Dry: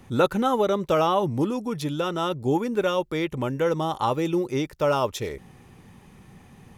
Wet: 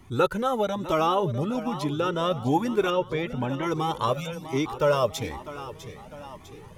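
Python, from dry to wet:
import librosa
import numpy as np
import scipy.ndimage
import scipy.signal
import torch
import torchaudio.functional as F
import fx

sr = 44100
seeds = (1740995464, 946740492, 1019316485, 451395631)

y = fx.high_shelf(x, sr, hz=6500.0, db=-7.5, at=(1.15, 2.35))
y = fx.rider(y, sr, range_db=10, speed_s=2.0)
y = fx.air_absorb(y, sr, metres=200.0, at=(2.9, 3.63))
y = fx.brickwall_bandstop(y, sr, low_hz=180.0, high_hz=2100.0, at=(4.13, 4.53))
y = fx.echo_feedback(y, sr, ms=651, feedback_pct=52, wet_db=-13.0)
y = fx.comb_cascade(y, sr, direction='rising', hz=1.1)
y = y * 10.0 ** (4.0 / 20.0)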